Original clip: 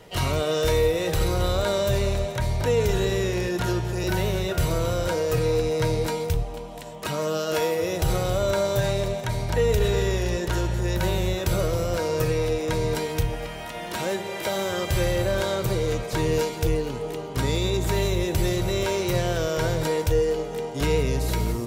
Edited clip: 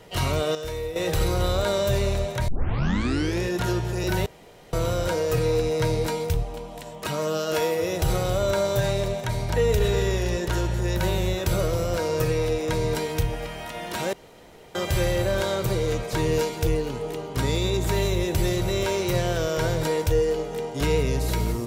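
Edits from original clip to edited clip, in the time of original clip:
0:00.55–0:00.96: clip gain −10 dB
0:02.48: tape start 0.93 s
0:04.26–0:04.73: fill with room tone
0:14.13–0:14.75: fill with room tone

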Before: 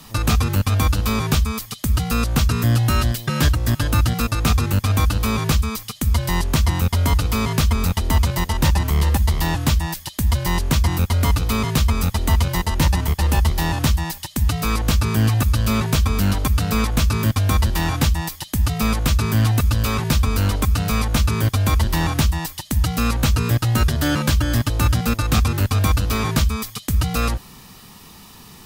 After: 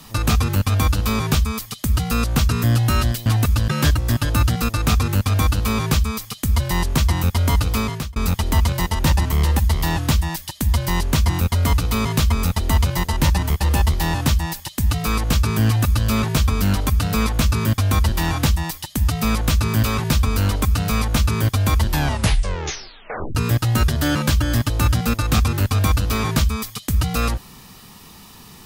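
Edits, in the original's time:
0:07.36–0:07.74: fade out
0:19.41–0:19.83: move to 0:03.26
0:21.85: tape stop 1.50 s

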